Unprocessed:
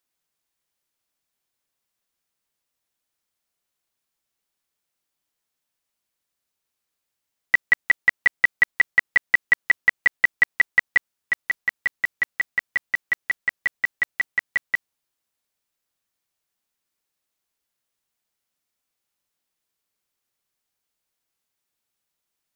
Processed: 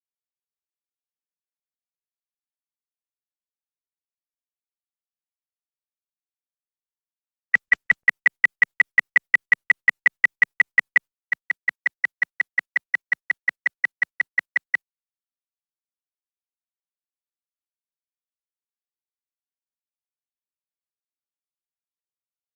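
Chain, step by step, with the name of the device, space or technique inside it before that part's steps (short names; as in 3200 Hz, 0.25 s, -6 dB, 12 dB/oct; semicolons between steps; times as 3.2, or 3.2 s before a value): video call (HPF 160 Hz 24 dB/oct; AGC gain up to 4.5 dB; gate -22 dBFS, range -36 dB; gain -2.5 dB; Opus 24 kbps 48000 Hz)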